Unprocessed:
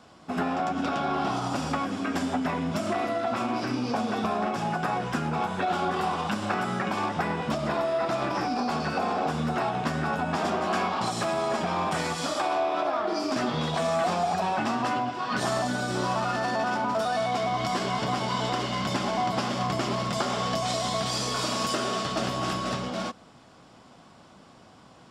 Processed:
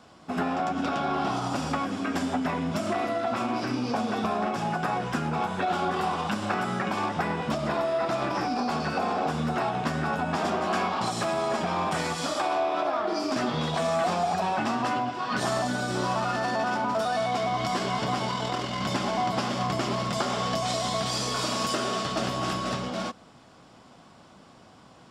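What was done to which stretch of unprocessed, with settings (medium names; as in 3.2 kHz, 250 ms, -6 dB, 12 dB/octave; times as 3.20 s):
18.31–18.81 s: AM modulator 42 Hz, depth 25%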